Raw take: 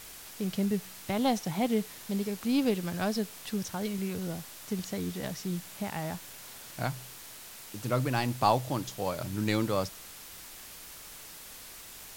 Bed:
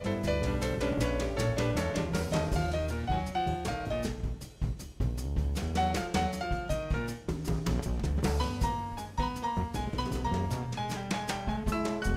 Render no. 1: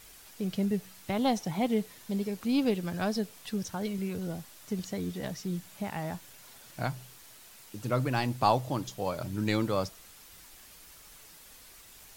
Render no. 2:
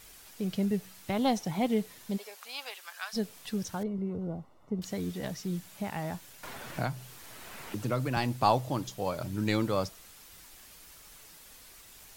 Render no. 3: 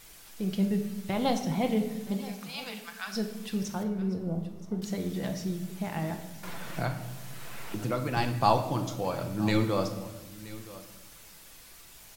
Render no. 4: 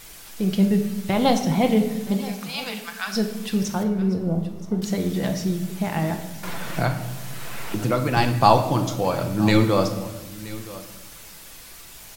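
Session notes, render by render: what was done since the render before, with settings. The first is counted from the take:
denoiser 7 dB, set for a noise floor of -47 dBFS
2.16–3.13 HPF 550 Hz -> 1200 Hz 24 dB/oct; 3.83–4.82 polynomial smoothing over 65 samples; 6.43–8.17 three-band squash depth 70%
echo 0.974 s -18 dB; shoebox room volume 540 m³, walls mixed, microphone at 0.77 m
gain +8.5 dB; limiter -1 dBFS, peak gain reduction 1 dB

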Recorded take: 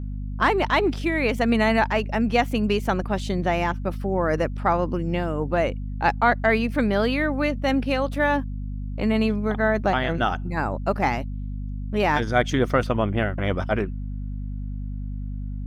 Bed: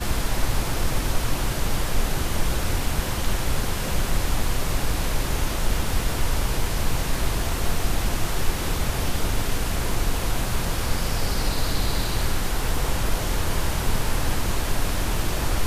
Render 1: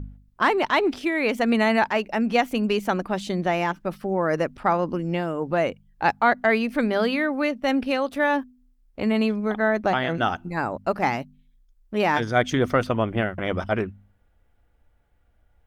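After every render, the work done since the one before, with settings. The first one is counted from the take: de-hum 50 Hz, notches 5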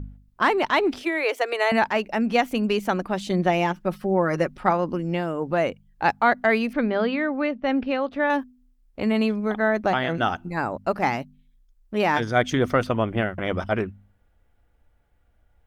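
1.03–1.72 steep high-pass 320 Hz 72 dB/oct; 3.3–4.71 comb 5.5 ms, depth 51%; 6.73–8.3 air absorption 230 m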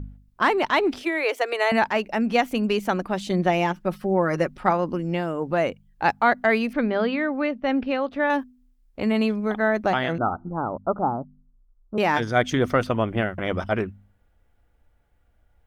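10.18–11.98 steep low-pass 1400 Hz 96 dB/oct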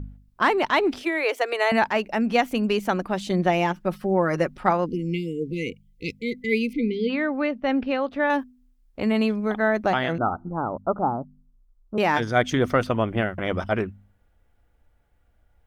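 4.86–7.1 spectral delete 510–2000 Hz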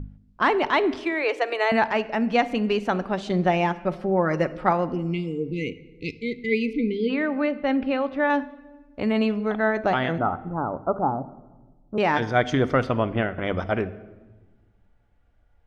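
air absorption 84 m; shoebox room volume 860 m³, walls mixed, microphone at 0.31 m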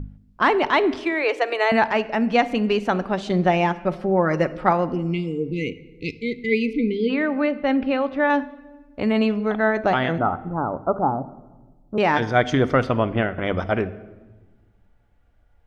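gain +2.5 dB

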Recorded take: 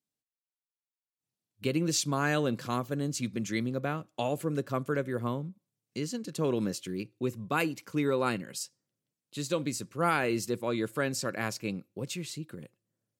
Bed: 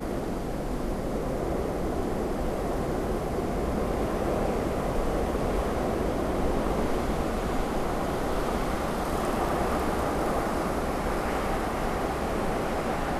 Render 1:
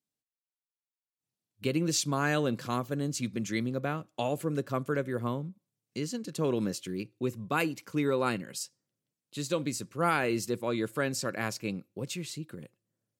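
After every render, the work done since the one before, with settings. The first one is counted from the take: nothing audible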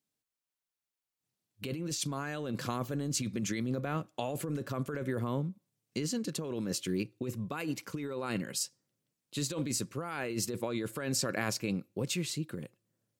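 negative-ratio compressor -34 dBFS, ratio -1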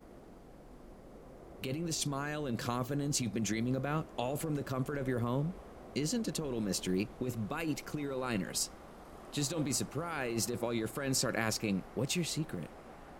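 add bed -23 dB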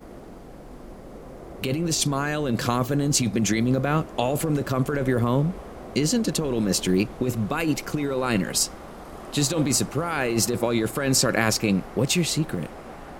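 gain +11.5 dB

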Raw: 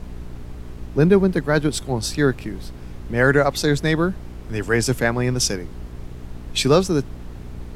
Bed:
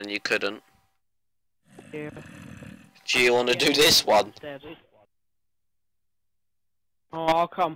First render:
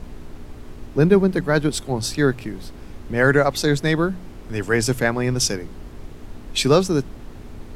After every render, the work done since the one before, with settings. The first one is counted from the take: de-hum 60 Hz, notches 3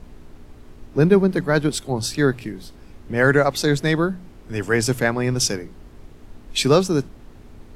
noise print and reduce 6 dB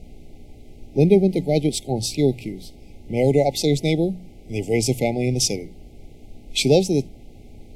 FFT band-reject 860–2000 Hz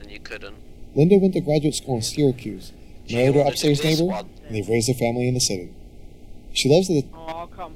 add bed -10.5 dB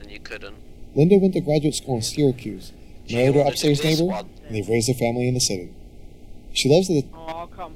nothing audible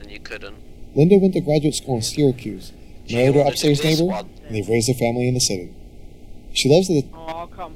gain +2 dB

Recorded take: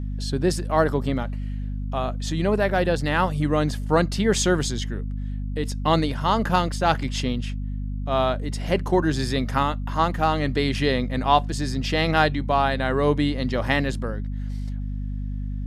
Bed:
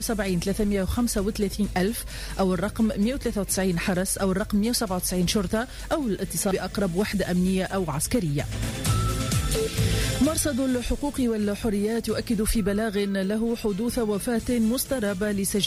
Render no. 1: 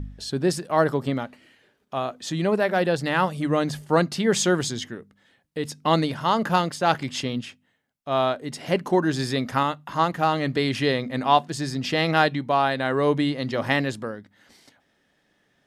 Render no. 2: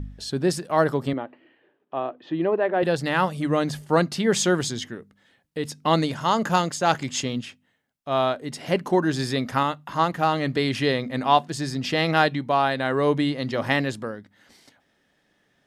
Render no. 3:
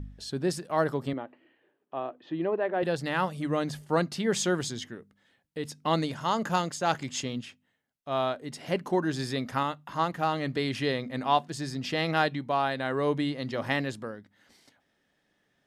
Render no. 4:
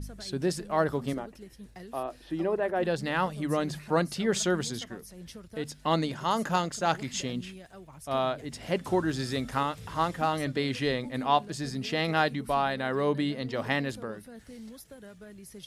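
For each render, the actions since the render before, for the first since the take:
de-hum 50 Hz, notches 5
1.13–2.83 speaker cabinet 200–2600 Hz, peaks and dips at 210 Hz -8 dB, 330 Hz +7 dB, 1400 Hz -6 dB, 2200 Hz -7 dB; 6–7.42 bell 6900 Hz +10 dB 0.34 oct
gain -6 dB
add bed -22 dB

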